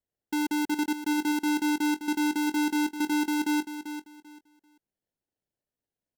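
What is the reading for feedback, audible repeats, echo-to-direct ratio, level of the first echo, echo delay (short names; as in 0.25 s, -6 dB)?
23%, 2, -10.0 dB, -10.0 dB, 0.391 s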